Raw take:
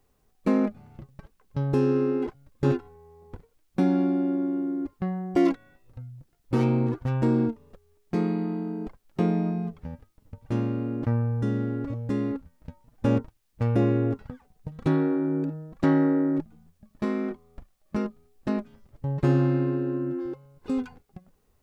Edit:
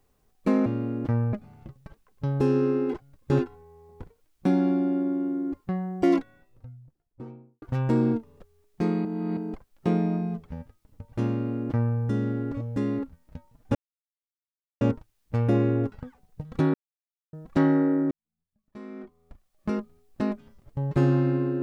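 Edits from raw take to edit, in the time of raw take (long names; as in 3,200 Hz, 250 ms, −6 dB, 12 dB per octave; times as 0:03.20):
0:05.38–0:06.95: fade out and dull
0:08.38–0:08.70: reverse
0:10.64–0:11.31: duplicate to 0:00.66
0:13.08: splice in silence 1.06 s
0:15.01–0:15.60: silence
0:16.38–0:17.98: fade in quadratic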